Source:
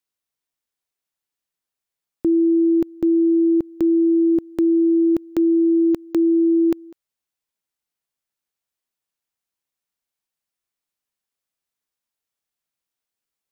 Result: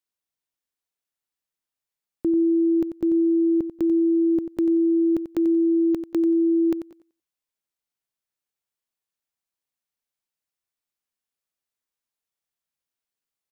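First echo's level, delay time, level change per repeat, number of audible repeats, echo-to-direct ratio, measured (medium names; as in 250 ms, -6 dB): -10.0 dB, 91 ms, -15.0 dB, 2, -10.0 dB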